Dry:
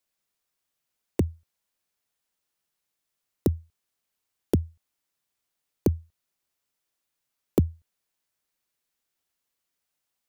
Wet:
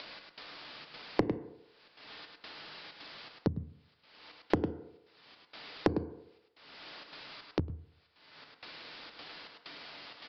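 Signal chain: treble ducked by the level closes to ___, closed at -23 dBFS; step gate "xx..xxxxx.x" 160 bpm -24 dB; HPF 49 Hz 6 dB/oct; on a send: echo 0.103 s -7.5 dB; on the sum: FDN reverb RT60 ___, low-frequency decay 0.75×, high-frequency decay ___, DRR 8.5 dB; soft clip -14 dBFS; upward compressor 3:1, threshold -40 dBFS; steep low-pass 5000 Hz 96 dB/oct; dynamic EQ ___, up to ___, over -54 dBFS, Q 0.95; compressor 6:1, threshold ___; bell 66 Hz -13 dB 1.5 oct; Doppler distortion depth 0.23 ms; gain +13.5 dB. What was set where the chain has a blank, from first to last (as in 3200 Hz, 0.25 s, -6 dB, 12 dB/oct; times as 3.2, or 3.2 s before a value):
2700 Hz, 0.56 s, 0.5×, 1300 Hz, +6 dB, -39 dBFS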